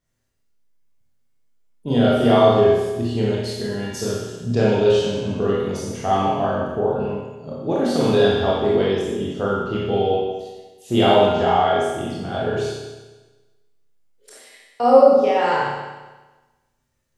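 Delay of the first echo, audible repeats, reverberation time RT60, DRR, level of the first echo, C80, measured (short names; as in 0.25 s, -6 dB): none, none, 1.2 s, -7.5 dB, none, 1.0 dB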